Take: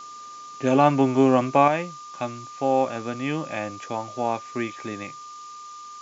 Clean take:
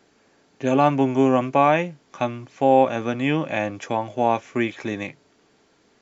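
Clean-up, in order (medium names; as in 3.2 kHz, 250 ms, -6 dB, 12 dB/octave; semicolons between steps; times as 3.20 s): band-stop 1.2 kHz, Q 30; noise print and reduce 20 dB; trim 0 dB, from 1.68 s +5.5 dB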